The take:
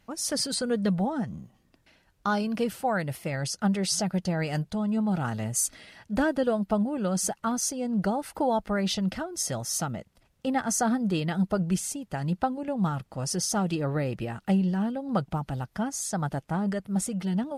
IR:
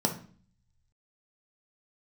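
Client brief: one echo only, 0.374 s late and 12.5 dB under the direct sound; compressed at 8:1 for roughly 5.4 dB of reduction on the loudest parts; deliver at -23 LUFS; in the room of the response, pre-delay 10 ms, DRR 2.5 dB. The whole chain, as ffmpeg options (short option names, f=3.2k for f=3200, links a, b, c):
-filter_complex "[0:a]acompressor=threshold=-26dB:ratio=8,aecho=1:1:374:0.237,asplit=2[a][b];[1:a]atrim=start_sample=2205,adelay=10[c];[b][c]afir=irnorm=-1:irlink=0,volume=-11.5dB[d];[a][d]amix=inputs=2:normalize=0,volume=2dB"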